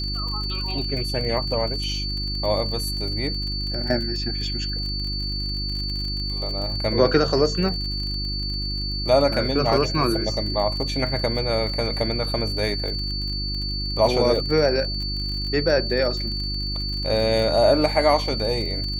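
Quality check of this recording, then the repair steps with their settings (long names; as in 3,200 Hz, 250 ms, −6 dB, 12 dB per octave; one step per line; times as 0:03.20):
surface crackle 42 per second −30 dBFS
mains hum 50 Hz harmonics 7 −29 dBFS
whistle 4,500 Hz −28 dBFS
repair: click removal
hum removal 50 Hz, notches 7
notch filter 4,500 Hz, Q 30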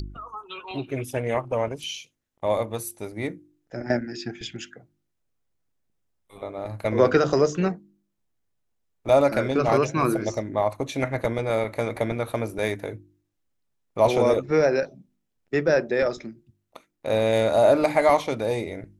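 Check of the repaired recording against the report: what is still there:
none of them is left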